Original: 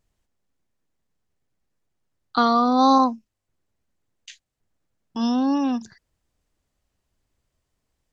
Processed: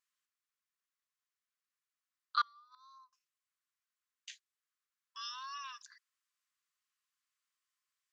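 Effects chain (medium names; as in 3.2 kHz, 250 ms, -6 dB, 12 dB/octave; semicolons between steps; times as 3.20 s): 2.41–3.13 s: inverted gate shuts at -13 dBFS, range -32 dB; brick-wall FIR high-pass 1 kHz; trim -7 dB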